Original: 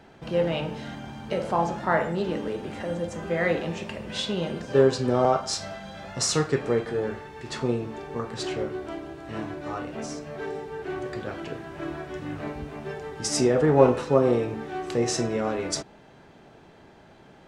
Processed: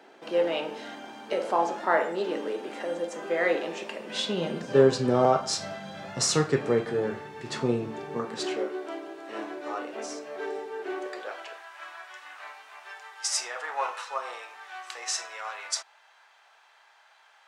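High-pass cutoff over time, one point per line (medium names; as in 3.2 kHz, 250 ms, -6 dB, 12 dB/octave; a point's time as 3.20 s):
high-pass 24 dB/octave
3.93 s 290 Hz
4.88 s 110 Hz
8.04 s 110 Hz
8.71 s 320 Hz
10.92 s 320 Hz
11.73 s 920 Hz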